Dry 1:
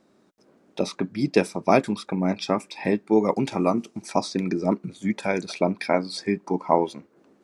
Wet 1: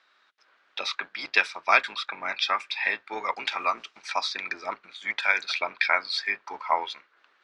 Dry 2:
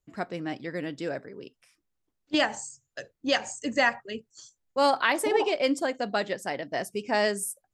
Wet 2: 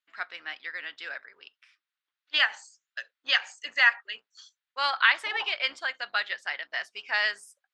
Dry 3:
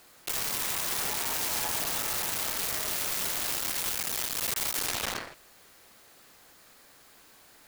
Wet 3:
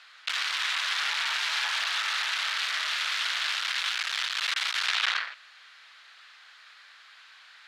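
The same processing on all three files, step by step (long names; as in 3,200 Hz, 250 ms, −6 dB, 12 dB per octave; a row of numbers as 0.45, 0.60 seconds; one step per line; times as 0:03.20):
sub-octave generator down 2 octaves, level +3 dB
Chebyshev band-pass filter 1,400–3,800 Hz, order 2
loudness normalisation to −27 LKFS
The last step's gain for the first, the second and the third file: +10.0, +6.0, +10.0 decibels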